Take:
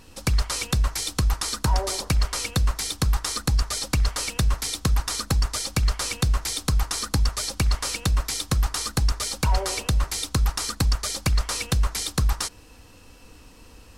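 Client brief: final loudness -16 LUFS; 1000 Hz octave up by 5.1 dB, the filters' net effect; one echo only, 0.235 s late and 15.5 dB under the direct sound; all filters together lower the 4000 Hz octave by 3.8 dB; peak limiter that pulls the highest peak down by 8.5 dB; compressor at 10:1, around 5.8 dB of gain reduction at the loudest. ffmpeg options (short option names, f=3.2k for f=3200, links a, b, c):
-af "equalizer=f=1k:t=o:g=6.5,equalizer=f=4k:t=o:g=-5,acompressor=threshold=-22dB:ratio=10,alimiter=limit=-18.5dB:level=0:latency=1,aecho=1:1:235:0.168,volume=14dB"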